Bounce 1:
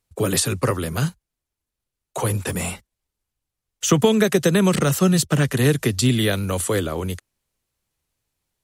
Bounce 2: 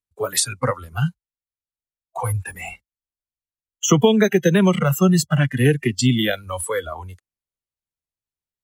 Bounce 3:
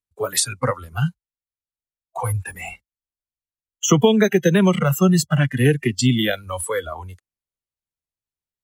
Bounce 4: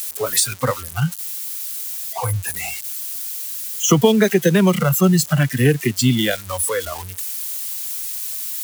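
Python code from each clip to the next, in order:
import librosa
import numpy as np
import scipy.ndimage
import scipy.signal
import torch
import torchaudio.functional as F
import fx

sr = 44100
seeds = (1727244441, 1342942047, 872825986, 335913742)

y1 = fx.noise_reduce_blind(x, sr, reduce_db=21)
y1 = y1 * 10.0 ** (2.0 / 20.0)
y2 = y1
y3 = y2 + 0.5 * 10.0 ** (-20.5 / 20.0) * np.diff(np.sign(y2), prepend=np.sign(y2[:1]))
y3 = y3 * 10.0 ** (1.0 / 20.0)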